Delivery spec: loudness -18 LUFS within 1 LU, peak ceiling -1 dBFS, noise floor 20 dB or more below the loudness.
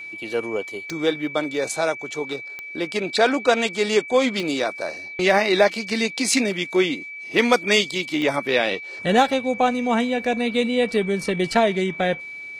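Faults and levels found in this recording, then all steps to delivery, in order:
clicks 4; steady tone 2300 Hz; tone level -33 dBFS; loudness -21.5 LUFS; peak -2.0 dBFS; loudness target -18.0 LUFS
-> de-click; notch 2300 Hz, Q 30; gain +3.5 dB; limiter -1 dBFS

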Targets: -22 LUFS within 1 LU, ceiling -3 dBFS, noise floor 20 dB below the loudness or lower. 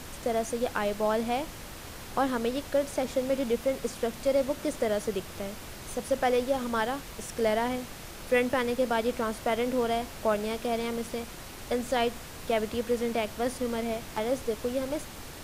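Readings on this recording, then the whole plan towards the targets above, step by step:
noise floor -43 dBFS; noise floor target -50 dBFS; loudness -30.0 LUFS; peak -14.0 dBFS; loudness target -22.0 LUFS
-> noise print and reduce 7 dB; gain +8 dB

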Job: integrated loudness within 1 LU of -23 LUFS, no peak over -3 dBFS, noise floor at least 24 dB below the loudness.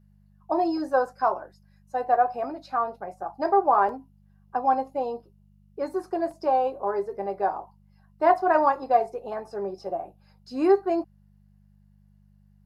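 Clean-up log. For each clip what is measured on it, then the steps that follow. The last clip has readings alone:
dropouts 2; longest dropout 1.8 ms; hum 50 Hz; harmonics up to 200 Hz; hum level -55 dBFS; loudness -26.0 LUFS; peak -6.5 dBFS; loudness target -23.0 LUFS
-> interpolate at 3.89/6.31, 1.8 ms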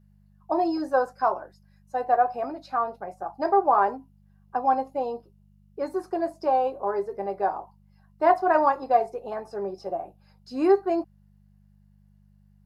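dropouts 0; hum 50 Hz; harmonics up to 200 Hz; hum level -55 dBFS
-> de-hum 50 Hz, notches 4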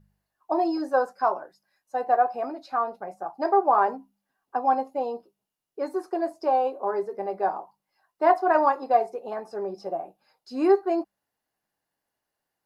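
hum none; loudness -26.0 LUFS; peak -7.0 dBFS; loudness target -23.0 LUFS
-> gain +3 dB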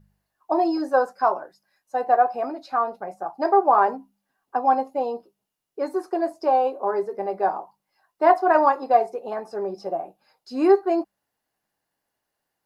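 loudness -23.0 LUFS; peak -4.0 dBFS; noise floor -81 dBFS

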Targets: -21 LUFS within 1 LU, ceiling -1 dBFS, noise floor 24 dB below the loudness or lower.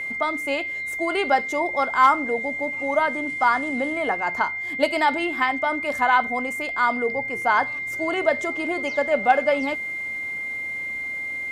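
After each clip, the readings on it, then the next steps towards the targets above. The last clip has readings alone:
ticks 31/s; steady tone 2100 Hz; tone level -27 dBFS; loudness -22.5 LUFS; peak -6.0 dBFS; loudness target -21.0 LUFS
-> de-click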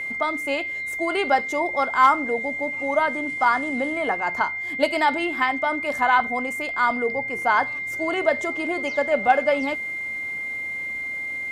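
ticks 0.087/s; steady tone 2100 Hz; tone level -27 dBFS
-> notch 2100 Hz, Q 30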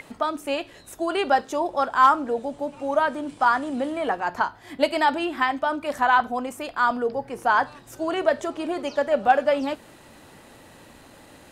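steady tone none; loudness -24.0 LUFS; peak -5.5 dBFS; loudness target -21.0 LUFS
-> gain +3 dB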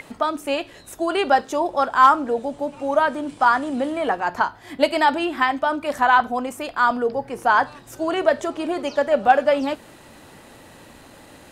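loudness -21.0 LUFS; peak -2.5 dBFS; noise floor -47 dBFS

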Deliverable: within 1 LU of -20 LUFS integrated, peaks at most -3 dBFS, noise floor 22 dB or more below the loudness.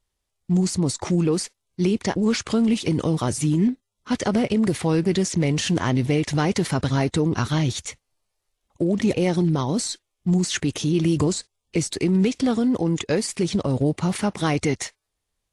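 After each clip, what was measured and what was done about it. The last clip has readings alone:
loudness -22.5 LUFS; peak -9.0 dBFS; loudness target -20.0 LUFS
-> gain +2.5 dB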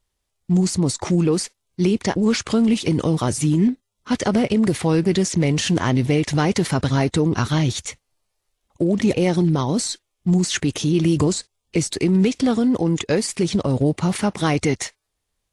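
loudness -20.0 LUFS; peak -6.5 dBFS; noise floor -77 dBFS

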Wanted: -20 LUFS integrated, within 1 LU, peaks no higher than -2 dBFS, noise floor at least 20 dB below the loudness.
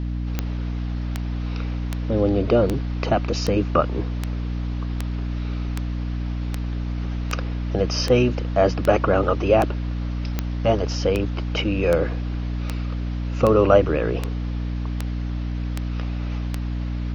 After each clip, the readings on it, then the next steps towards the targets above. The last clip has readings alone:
clicks 22; hum 60 Hz; harmonics up to 300 Hz; hum level -23 dBFS; loudness -23.5 LUFS; peak -2.5 dBFS; loudness target -20.0 LUFS
-> de-click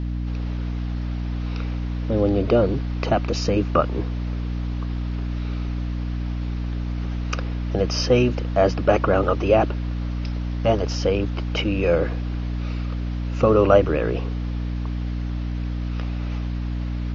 clicks 0; hum 60 Hz; harmonics up to 300 Hz; hum level -23 dBFS
-> de-hum 60 Hz, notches 5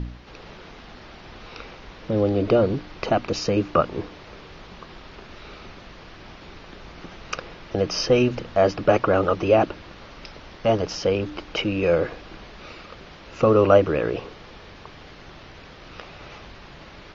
hum none; loudness -22.0 LUFS; peak -2.5 dBFS; loudness target -20.0 LUFS
-> gain +2 dB; limiter -2 dBFS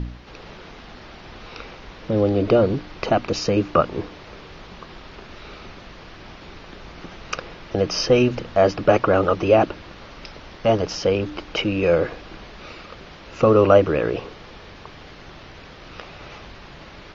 loudness -20.0 LUFS; peak -2.0 dBFS; noise floor -42 dBFS

